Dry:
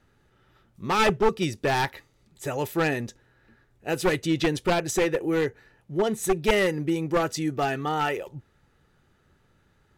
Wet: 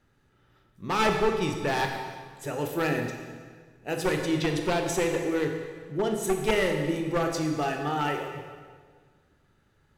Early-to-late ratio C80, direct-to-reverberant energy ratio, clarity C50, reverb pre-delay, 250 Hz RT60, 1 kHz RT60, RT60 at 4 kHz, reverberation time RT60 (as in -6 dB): 6.0 dB, 3.0 dB, 4.5 dB, 20 ms, 1.8 s, 1.6 s, 1.4 s, 1.6 s